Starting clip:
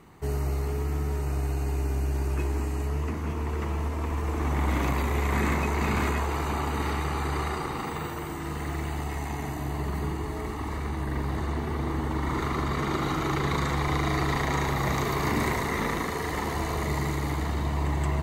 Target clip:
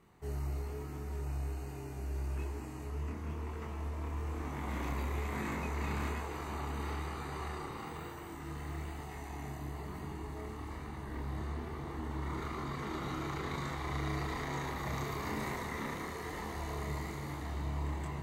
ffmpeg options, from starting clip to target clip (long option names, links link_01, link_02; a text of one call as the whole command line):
ffmpeg -i in.wav -af "flanger=delay=22.5:depth=5.8:speed=1.1,volume=-8dB" out.wav